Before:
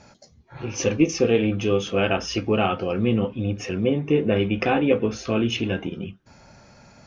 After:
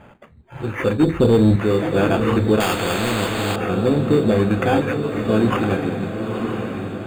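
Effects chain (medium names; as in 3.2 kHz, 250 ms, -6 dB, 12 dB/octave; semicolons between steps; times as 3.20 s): 1.03–1.56 s: tilt EQ -3.5 dB/octave; 4.81–5.25 s: high-pass 1.1 kHz; in parallel at -1 dB: peak limiter -13 dBFS, peak gain reduction 11.5 dB; on the sum: sample-and-hold 11×; saturation -7 dBFS, distortion -16 dB; boxcar filter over 8 samples; on a send: echo that smears into a reverb 969 ms, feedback 51%, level -6 dB; 2.60–3.56 s: on the sum: spectrum-flattening compressor 2:1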